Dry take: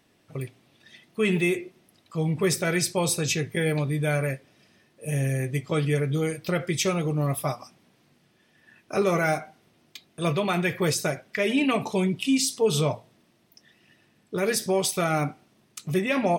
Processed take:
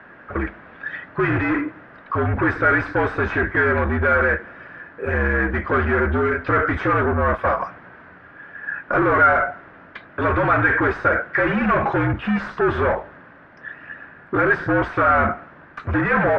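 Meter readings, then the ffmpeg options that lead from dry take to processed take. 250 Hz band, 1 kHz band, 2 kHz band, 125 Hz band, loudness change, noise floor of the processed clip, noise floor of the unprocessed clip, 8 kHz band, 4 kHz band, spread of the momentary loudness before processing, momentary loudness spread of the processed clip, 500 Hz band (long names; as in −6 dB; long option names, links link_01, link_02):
+3.5 dB, +12.0 dB, +12.5 dB, +2.0 dB, +5.5 dB, −46 dBFS, −64 dBFS, below −30 dB, −11.0 dB, 13 LU, 17 LU, +5.0 dB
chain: -filter_complex "[0:a]asplit=2[link_01][link_02];[link_02]highpass=frequency=720:poles=1,volume=29dB,asoftclip=type=tanh:threshold=-13dB[link_03];[link_01][link_03]amix=inputs=2:normalize=0,lowpass=frequency=1200:poles=1,volume=-6dB,lowpass=frequency=1600:width_type=q:width=5.1,afreqshift=-61"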